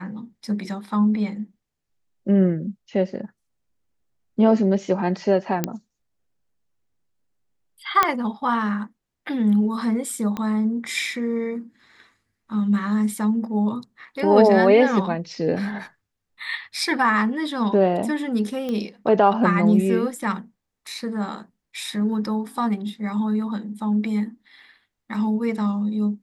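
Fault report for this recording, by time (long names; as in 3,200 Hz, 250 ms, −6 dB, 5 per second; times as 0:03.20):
0:05.64: click −7 dBFS
0:08.03: click −3 dBFS
0:10.37: click −15 dBFS
0:18.69: click −17 dBFS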